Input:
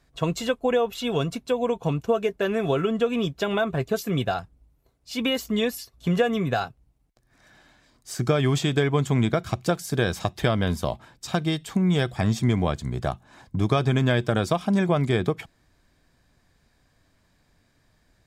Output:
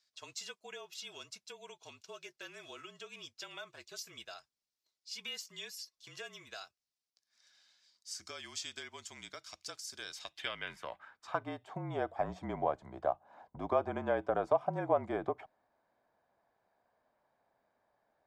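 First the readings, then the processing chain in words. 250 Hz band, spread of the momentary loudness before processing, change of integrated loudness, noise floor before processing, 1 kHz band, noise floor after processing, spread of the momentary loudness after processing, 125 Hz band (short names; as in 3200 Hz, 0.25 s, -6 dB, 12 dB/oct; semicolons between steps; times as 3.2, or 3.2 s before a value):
-21.5 dB, 7 LU, -14.5 dB, -66 dBFS, -9.0 dB, under -85 dBFS, 17 LU, -25.5 dB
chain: frequency shift -39 Hz; band-pass sweep 5000 Hz -> 750 Hz, 10.03–11.62; dynamic EQ 3800 Hz, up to -7 dB, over -56 dBFS, Q 1.6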